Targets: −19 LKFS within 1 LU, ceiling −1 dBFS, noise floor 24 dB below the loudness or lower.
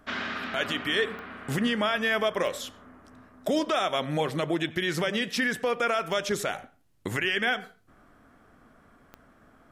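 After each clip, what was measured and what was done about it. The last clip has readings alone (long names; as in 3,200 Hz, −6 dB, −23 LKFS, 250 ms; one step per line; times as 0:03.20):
number of clicks 4; integrated loudness −28.0 LKFS; sample peak −15.0 dBFS; target loudness −19.0 LKFS
→ click removal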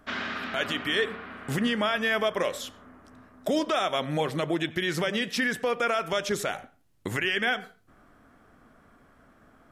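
number of clicks 0; integrated loudness −28.0 LKFS; sample peak −15.0 dBFS; target loudness −19.0 LKFS
→ level +9 dB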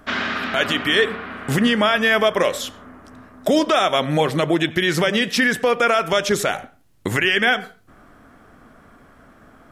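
integrated loudness −19.0 LKFS; sample peak −6.0 dBFS; background noise floor −51 dBFS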